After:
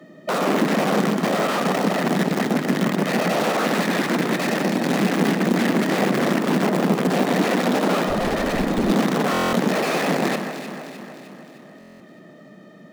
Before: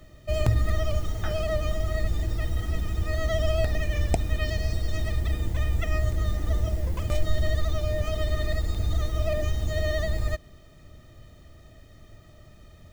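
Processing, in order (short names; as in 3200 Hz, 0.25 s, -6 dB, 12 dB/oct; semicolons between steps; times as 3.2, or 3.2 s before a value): small resonant body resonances 1800 Hz, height 11 dB, ringing for 40 ms; 1.86–3.64 bell 250 Hz -4.5 dB 1.5 oct; analogue delay 65 ms, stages 2048, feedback 84%, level -22 dB; wrapped overs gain 23 dB; steep high-pass 180 Hz 48 dB/oct; echo with dull and thin repeats by turns 0.153 s, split 2000 Hz, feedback 74%, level -6.5 dB; 8.07–8.9 hard clip -25.5 dBFS, distortion -20 dB; tilt -3.5 dB/oct; stuck buffer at 9.32/11.79, samples 1024, times 8; gain +6.5 dB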